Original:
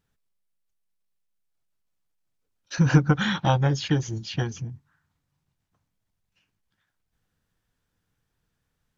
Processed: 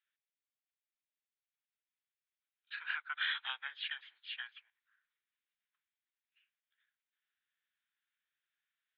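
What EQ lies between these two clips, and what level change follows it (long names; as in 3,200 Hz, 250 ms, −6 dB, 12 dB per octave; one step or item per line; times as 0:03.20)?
inverse Chebyshev high-pass filter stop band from 280 Hz, stop band 80 dB
elliptic low-pass filter 3,700 Hz, stop band 40 dB
high-frequency loss of the air 160 metres
−1.5 dB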